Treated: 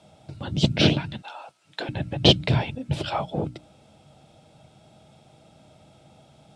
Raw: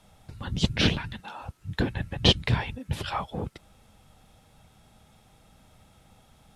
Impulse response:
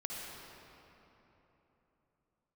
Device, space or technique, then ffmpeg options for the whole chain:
car door speaker: -filter_complex "[0:a]highpass=100,equalizer=f=140:t=q:w=4:g=7,equalizer=f=320:t=q:w=4:g=7,equalizer=f=630:t=q:w=4:g=8,equalizer=f=1100:t=q:w=4:g=-6,equalizer=f=1800:t=q:w=4:g=-8,equalizer=f=6500:t=q:w=4:g=-4,lowpass=f=8600:w=0.5412,lowpass=f=8600:w=1.3066,bandreject=f=60:t=h:w=6,bandreject=f=120:t=h:w=6,bandreject=f=180:t=h:w=6,bandreject=f=240:t=h:w=6,bandreject=f=300:t=h:w=6,asettb=1/sr,asplit=3[s0][s1][s2];[s0]atrim=end=1.224[s3];[s1]atrim=start=1.22:end=1.89,asetpts=PTS-STARTPTS,afade=t=in:d=0.004:c=qsin,afade=t=out:st=0.666:d=0.004:c=qsin,highpass=780[s4];[s2]atrim=start=1.886[s5];[s3][s4]acrossfade=d=0.004:c1=hsin:c2=qsin[s6];[s6][s5]acrossfade=d=0.004:c1=qsin:c2=hsin,volume=1.5"

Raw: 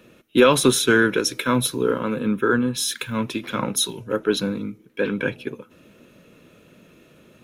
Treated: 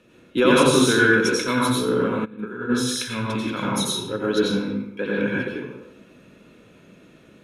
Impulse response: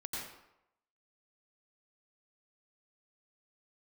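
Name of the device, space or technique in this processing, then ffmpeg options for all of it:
bathroom: -filter_complex "[1:a]atrim=start_sample=2205[s0];[0:a][s0]afir=irnorm=-1:irlink=0,lowpass=10000,asplit=3[s1][s2][s3];[s1]afade=t=out:st=2.24:d=0.02[s4];[s2]agate=range=0.0224:threshold=0.355:ratio=3:detection=peak,afade=t=in:st=2.24:d=0.02,afade=t=out:st=2.69:d=0.02[s5];[s3]afade=t=in:st=2.69:d=0.02[s6];[s4][s5][s6]amix=inputs=3:normalize=0"

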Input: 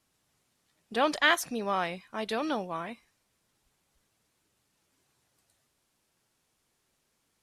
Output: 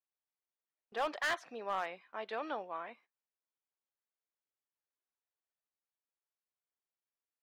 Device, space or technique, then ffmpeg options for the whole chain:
walkie-talkie: -af "highpass=480,lowpass=2400,asoftclip=type=hard:threshold=0.0708,agate=range=0.112:threshold=0.00126:ratio=16:detection=peak,volume=0.562"

